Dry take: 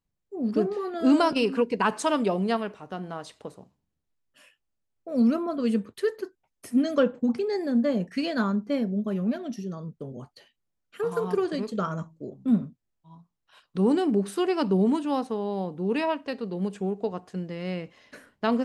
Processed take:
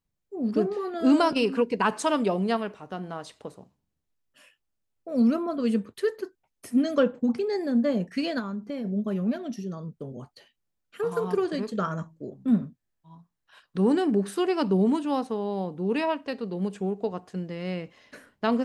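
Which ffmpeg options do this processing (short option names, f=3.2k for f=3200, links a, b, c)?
-filter_complex "[0:a]asplit=3[a][b][c];[a]afade=t=out:st=8.38:d=0.02[d];[b]acompressor=threshold=-29dB:ratio=6:attack=3.2:release=140:knee=1:detection=peak,afade=t=in:st=8.38:d=0.02,afade=t=out:st=8.84:d=0.02[e];[c]afade=t=in:st=8.84:d=0.02[f];[d][e][f]amix=inputs=3:normalize=0,asettb=1/sr,asplit=3[g][h][i];[g]atrim=end=11.554[j];[h]atrim=start=11.55:end=14.34,asetpts=PTS-STARTPTS,afade=t=in:d=0.004:c=qsin,afade=t=out:st=2.786:d=0.004:c=qsin,equalizer=f=1.7k:t=o:w=0.29:g=7[k];[i]atrim=start=14.336[l];[j][k]acrossfade=d=0.004:c1=hsin:c2=qsin[m];[m][l]acrossfade=d=0.004:c1=qsin:c2=hsin"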